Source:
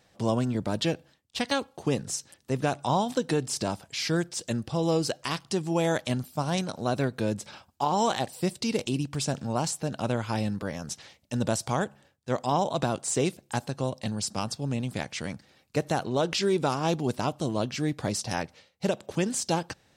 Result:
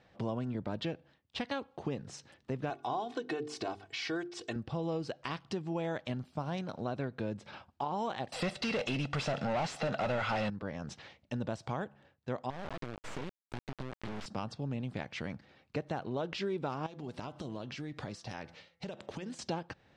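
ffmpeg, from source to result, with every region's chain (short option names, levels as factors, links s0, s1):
-filter_complex "[0:a]asettb=1/sr,asplit=3[s0][s1][s2];[s0]atrim=end=2.704[s3];[s1]atrim=start=2.7:end=4.56,asetpts=PTS-STARTPTS,afade=t=in:d=0.004:c=qsin,afade=t=out:st=1.856:d=0.004:c=qsin,highpass=f=240:p=1,bandreject=f=50:t=h:w=6,bandreject=f=100:t=h:w=6,bandreject=f=150:t=h:w=6,bandreject=f=200:t=h:w=6,bandreject=f=250:t=h:w=6,bandreject=f=300:t=h:w=6,bandreject=f=350:t=h:w=6,bandreject=f=400:t=h:w=6,bandreject=f=450:t=h:w=6,aecho=1:1:2.7:0.72,atrim=end_sample=82026[s4];[s2]atrim=start=4.556[s5];[s3][s4]acrossfade=d=0.004:c1=hsin:c2=qsin[s6];[s6][s5]acrossfade=d=0.004:c1=qsin:c2=hsin,asettb=1/sr,asplit=3[s7][s8][s9];[s7]atrim=end=8.324[s10];[s8]atrim=start=8.32:end=10.5,asetpts=PTS-STARTPTS,afade=t=in:d=0.004:c=qsin,afade=t=out:st=2.176:d=0.004:c=qsin,aecho=1:1:1.5:0.53,atrim=end_sample=96138,asplit=2[s11][s12];[s12]highpass=f=720:p=1,volume=28.2,asoftclip=type=tanh:threshold=0.211[s13];[s11][s13]amix=inputs=2:normalize=0,lowpass=f=7900:p=1,volume=0.501[s14];[s9]atrim=start=10.496[s15];[s10][s14]acrossfade=d=0.004:c1=hsin:c2=qsin[s16];[s16][s15]acrossfade=d=0.004:c1=qsin:c2=hsin,asettb=1/sr,asplit=3[s17][s18][s19];[s17]atrim=end=12.504[s20];[s18]atrim=start=12.5:end=14.26,asetpts=PTS-STARTPTS,afade=t=in:d=0.004:c=qsin,afade=t=out:st=1.756:d=0.004:c=qsin,acompressor=threshold=0.0355:ratio=5:attack=3.2:release=140:knee=1:detection=peak,acrusher=bits=3:dc=4:mix=0:aa=0.000001[s21];[s19]atrim=start=14.256[s22];[s20][s21]acrossfade=d=0.004:c1=hsin:c2=qsin[s23];[s23][s22]acrossfade=d=0.004:c1=qsin:c2=hsin,asettb=1/sr,asplit=3[s24][s25][s26];[s24]atrim=end=16.864[s27];[s25]atrim=start=16.86:end=19.39,asetpts=PTS-STARTPTS,afade=t=in:d=0.004:c=qsin,afade=t=out:st=2.526:d=0.004:c=qsin,highshelf=f=3100:g=9,acompressor=threshold=0.0178:ratio=10:attack=3.2:release=140:knee=1:detection=peak,bandreject=f=168.1:t=h:w=4,bandreject=f=336.2:t=h:w=4,bandreject=f=504.3:t=h:w=4,bandreject=f=672.4:t=h:w=4,bandreject=f=840.5:t=h:w=4,bandreject=f=1008.6:t=h:w=4,bandreject=f=1176.7:t=h:w=4,bandreject=f=1344.8:t=h:w=4,bandreject=f=1512.9:t=h:w=4,bandreject=f=1681:t=h:w=4,bandreject=f=1849.1:t=h:w=4,bandreject=f=2017.2:t=h:w=4,bandreject=f=2185.3:t=h:w=4[s28];[s26]atrim=start=19.386[s29];[s27][s28]acrossfade=d=0.004:c1=hsin:c2=qsin[s30];[s30][s29]acrossfade=d=0.004:c1=qsin:c2=hsin,lowpass=3000,acompressor=threshold=0.0141:ratio=2.5"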